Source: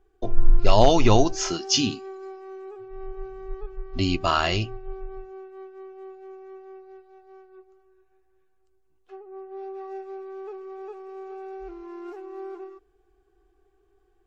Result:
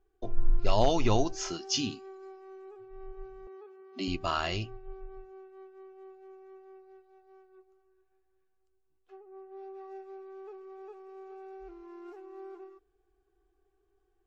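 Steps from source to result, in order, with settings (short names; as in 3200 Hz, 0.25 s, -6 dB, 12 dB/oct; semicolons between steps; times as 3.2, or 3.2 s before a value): 3.47–4.08 steep high-pass 180 Hz 96 dB/oct; gain -8.5 dB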